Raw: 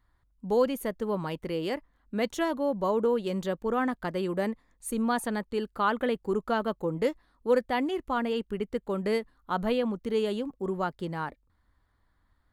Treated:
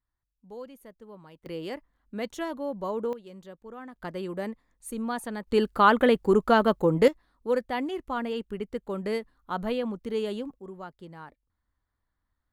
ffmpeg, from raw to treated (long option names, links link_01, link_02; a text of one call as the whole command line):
ffmpeg -i in.wav -af "asetnsamples=nb_out_samples=441:pad=0,asendcmd='1.46 volume volume -4.5dB;3.13 volume volume -15dB;3.96 volume volume -4dB;5.47 volume volume 7.5dB;7.08 volume volume -2dB;10.59 volume volume -11dB',volume=-17dB" out.wav